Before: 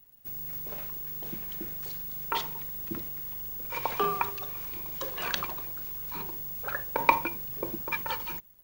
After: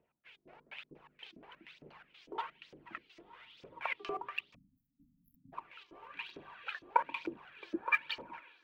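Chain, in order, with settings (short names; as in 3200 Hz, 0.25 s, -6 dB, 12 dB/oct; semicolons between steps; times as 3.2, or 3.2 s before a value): LFO low-pass square 4.2 Hz 290–2700 Hz; on a send: diffused feedback echo 1.081 s, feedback 47%, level -15 dB; on the sum: LFO band-pass saw up 2.2 Hz 440–6200 Hz; phaser 1.1 Hz, delay 3.1 ms, feedback 50%; spectral delete 4.54–5.53, 290–11000 Hz; gain +2 dB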